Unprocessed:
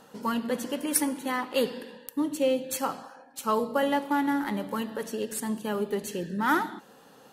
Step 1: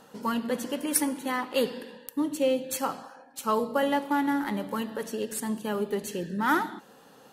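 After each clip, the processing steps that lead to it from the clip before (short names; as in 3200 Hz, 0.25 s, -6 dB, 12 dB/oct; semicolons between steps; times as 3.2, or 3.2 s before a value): nothing audible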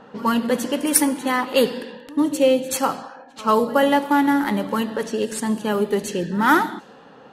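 low-pass opened by the level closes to 2300 Hz, open at -25.5 dBFS; reverse echo 86 ms -21.5 dB; gain +8.5 dB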